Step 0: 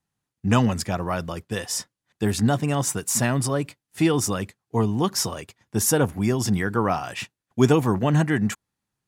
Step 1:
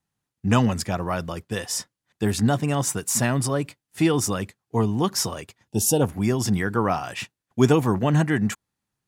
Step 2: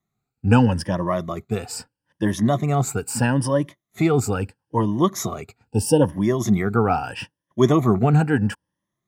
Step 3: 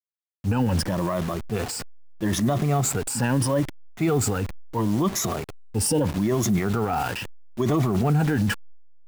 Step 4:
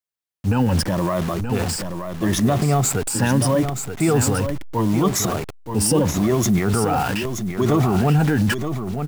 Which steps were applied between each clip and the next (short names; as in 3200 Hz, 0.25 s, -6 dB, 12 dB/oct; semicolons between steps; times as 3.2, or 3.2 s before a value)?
spectral gain 5.68–6.02, 940–2500 Hz -18 dB
moving spectral ripple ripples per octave 1.2, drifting +0.77 Hz, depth 15 dB; high shelf 2200 Hz -9.5 dB; gain +1.5 dB
level-crossing sampler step -34 dBFS; transient shaper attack -5 dB, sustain +7 dB; limiter -14.5 dBFS, peak gain reduction 10 dB
echo 0.926 s -8 dB; gain +4 dB